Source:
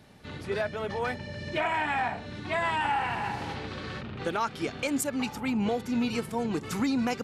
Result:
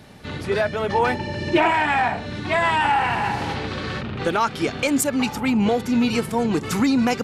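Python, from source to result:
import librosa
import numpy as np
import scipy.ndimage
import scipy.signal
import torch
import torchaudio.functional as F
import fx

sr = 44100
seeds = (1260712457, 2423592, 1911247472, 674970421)

p1 = 10.0 ** (-26.5 / 20.0) * np.tanh(x / 10.0 ** (-26.5 / 20.0))
p2 = x + (p1 * 10.0 ** (-8.0 / 20.0))
p3 = fx.small_body(p2, sr, hz=(340.0, 880.0, 2700.0), ring_ms=45, db=11, at=(0.93, 1.71))
y = p3 * 10.0 ** (6.5 / 20.0)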